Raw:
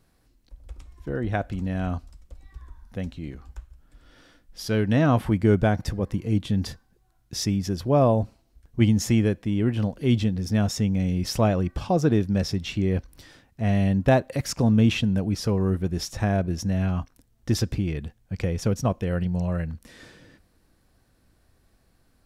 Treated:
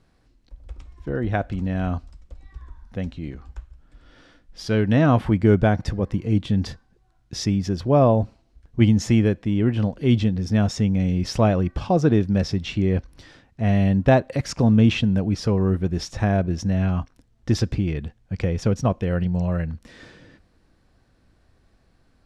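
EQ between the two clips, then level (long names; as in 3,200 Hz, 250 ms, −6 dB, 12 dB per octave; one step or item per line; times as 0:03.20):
high-frequency loss of the air 72 metres
+3.0 dB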